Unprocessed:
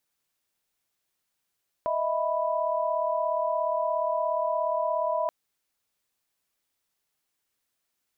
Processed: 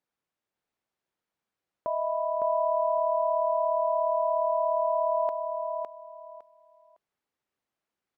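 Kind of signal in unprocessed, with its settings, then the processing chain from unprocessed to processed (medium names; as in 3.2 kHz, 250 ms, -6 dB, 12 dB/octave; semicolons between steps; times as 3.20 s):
chord D#5/E5/B5 sine, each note -28.5 dBFS 3.43 s
low-pass 1.1 kHz 6 dB/octave; bass shelf 73 Hz -9.5 dB; feedback delay 558 ms, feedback 22%, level -4 dB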